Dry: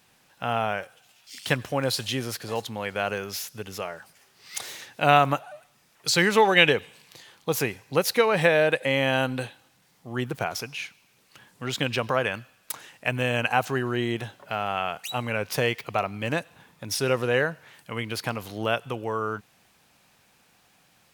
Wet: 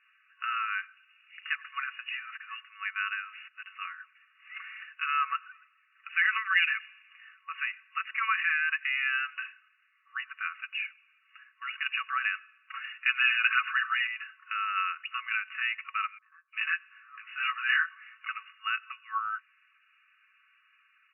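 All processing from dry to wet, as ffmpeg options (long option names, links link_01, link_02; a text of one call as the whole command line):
ffmpeg -i in.wav -filter_complex "[0:a]asettb=1/sr,asplit=3[link_01][link_02][link_03];[link_01]atrim=end=12.734[link_04];[link_02]atrim=start=12.73:end=14.07,asetpts=PTS-STARTPTS,afade=type=in:duration=0.004:curve=qsin,afade=type=out:start_time=1.336:duration=0.004:curve=qsin,afreqshift=-33,aecho=1:1:7.4:0.76,atrim=end_sample=59094,acontrast=56[link_05];[link_03]atrim=start=14.066[link_06];[link_04][link_05]acrossfade=duration=0.004:curve1=hsin:curve2=qsin[link_07];[link_07][link_06]acrossfade=duration=0.004:curve1=qsin:curve2=hsin,asettb=1/sr,asplit=3[link_08][link_09][link_10];[link_08]atrim=end=16.184[link_11];[link_09]atrim=start=16.18:end=18.29,asetpts=PTS-STARTPTS,afade=type=in:duration=0.004:curve=qsin,afade=type=out:start_time=2.106:duration=0.004:curve=qsin,bass=frequency=250:gain=11,treble=frequency=4000:gain=-1,asplit=2[link_12][link_13];[link_13]adelay=18,volume=-3dB[link_14];[link_12][link_14]amix=inputs=2:normalize=0,atrim=end_sample=93051,acrossover=split=740|5500[link_15][link_16][link_17];[link_17]adelay=300[link_18];[link_16]adelay=350[link_19];[link_15][link_19][link_18]amix=inputs=3:normalize=0,atrim=end_sample=93051[link_20];[link_10]atrim=start=18.286[link_21];[link_11][link_20]acrossfade=duration=0.004:curve1=hsin:curve2=qsin[link_22];[link_22][link_21]acrossfade=duration=0.004:curve1=qsin:curve2=hsin,alimiter=limit=-12.5dB:level=0:latency=1:release=36,aecho=1:1:4.6:0.56,afftfilt=real='re*between(b*sr/4096,1100,2900)':imag='im*between(b*sr/4096,1100,2900)':win_size=4096:overlap=0.75" out.wav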